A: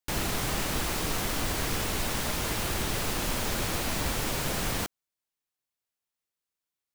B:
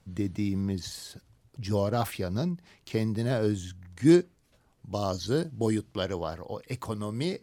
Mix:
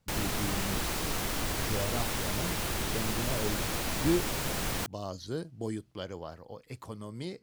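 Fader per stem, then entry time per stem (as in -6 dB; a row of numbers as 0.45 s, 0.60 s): -2.5 dB, -8.5 dB; 0.00 s, 0.00 s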